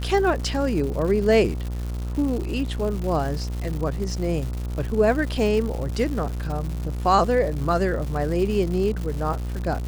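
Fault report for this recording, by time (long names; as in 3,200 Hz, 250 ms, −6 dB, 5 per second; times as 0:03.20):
mains buzz 60 Hz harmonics 24 −28 dBFS
surface crackle 230 per second −30 dBFS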